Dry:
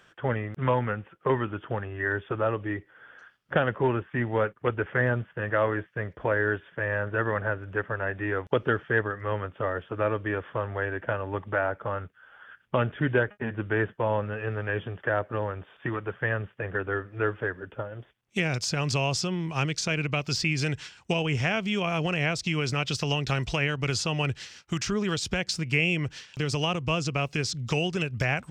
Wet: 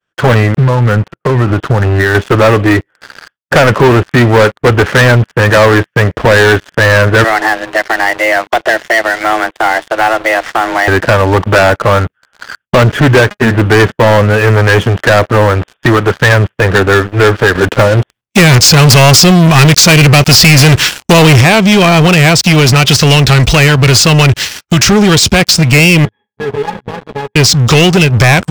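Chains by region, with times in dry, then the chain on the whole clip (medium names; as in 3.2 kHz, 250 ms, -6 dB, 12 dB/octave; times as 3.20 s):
0.58–2.15 s: low-pass 1.6 kHz 6 dB/octave + peaking EQ 130 Hz +7 dB 0.63 oct + compression 12:1, threshold -29 dBFS
7.24–10.88 s: bass shelf 250 Hz -11 dB + compression 2:1, threshold -34 dBFS + frequency shift +220 Hz
17.55–21.41 s: upward compressor, threshold -48 dBFS + waveshaping leveller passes 2
26.05–27.36 s: CVSD coder 16 kbps + high-pass 180 Hz + pitch-class resonator G#, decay 0.12 s
whole clip: expander -49 dBFS; waveshaping leveller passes 5; trim +8.5 dB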